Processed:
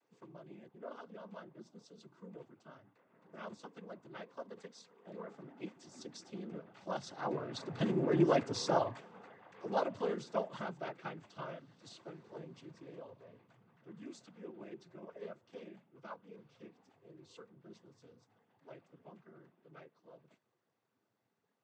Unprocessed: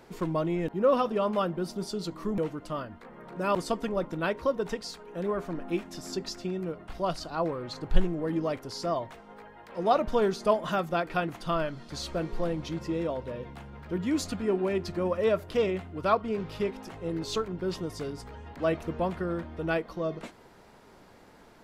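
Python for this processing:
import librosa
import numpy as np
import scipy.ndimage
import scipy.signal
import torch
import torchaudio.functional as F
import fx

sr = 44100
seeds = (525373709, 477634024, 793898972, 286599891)

y = fx.doppler_pass(x, sr, speed_mps=7, closest_m=2.8, pass_at_s=8.33)
y = fx.noise_vocoder(y, sr, seeds[0], bands=16)
y = y * 10.0 ** (2.0 / 20.0)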